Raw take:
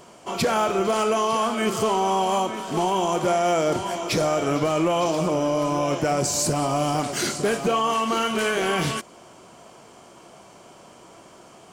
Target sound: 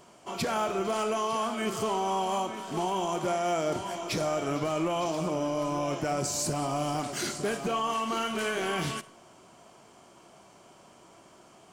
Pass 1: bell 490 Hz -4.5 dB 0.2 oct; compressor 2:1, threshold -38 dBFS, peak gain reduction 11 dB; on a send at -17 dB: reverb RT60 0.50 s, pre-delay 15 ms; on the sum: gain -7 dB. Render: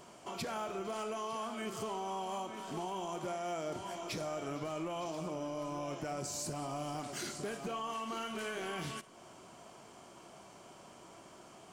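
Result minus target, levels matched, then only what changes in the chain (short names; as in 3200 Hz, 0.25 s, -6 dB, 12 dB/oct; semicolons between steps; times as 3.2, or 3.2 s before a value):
compressor: peak gain reduction +11 dB
remove: compressor 2:1, threshold -38 dBFS, peak gain reduction 11 dB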